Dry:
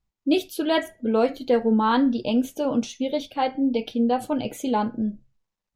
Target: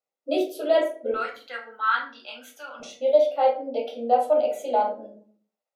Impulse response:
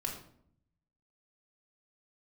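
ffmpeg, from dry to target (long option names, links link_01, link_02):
-filter_complex "[0:a]asetnsamples=nb_out_samples=441:pad=0,asendcmd='1.14 highpass f 1500;2.8 highpass f 600',highpass=frequency=520:width_type=q:width=4.9[link_01];[1:a]atrim=start_sample=2205,asetrate=83790,aresample=44100[link_02];[link_01][link_02]afir=irnorm=-1:irlink=0,volume=-1.5dB"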